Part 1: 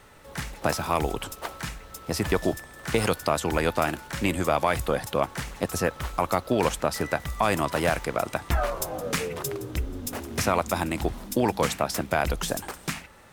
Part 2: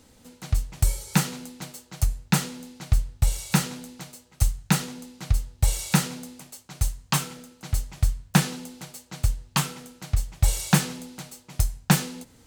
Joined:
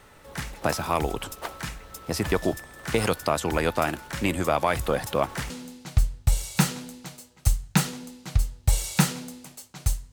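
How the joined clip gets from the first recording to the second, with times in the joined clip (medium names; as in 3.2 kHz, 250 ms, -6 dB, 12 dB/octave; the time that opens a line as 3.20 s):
part 1
4.80–5.50 s: companding laws mixed up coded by mu
5.50 s: go over to part 2 from 2.45 s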